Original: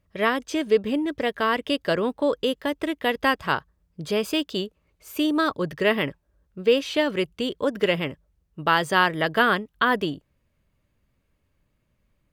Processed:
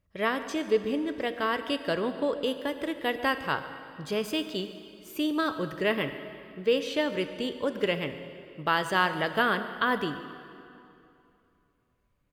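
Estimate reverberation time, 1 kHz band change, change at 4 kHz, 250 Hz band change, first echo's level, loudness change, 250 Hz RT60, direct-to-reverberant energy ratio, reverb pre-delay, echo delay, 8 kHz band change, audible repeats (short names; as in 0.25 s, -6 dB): 2.7 s, -5.0 dB, -5.0 dB, -5.0 dB, -18.5 dB, -5.0 dB, 2.7 s, 9.0 dB, 15 ms, 0.141 s, -5.0 dB, 1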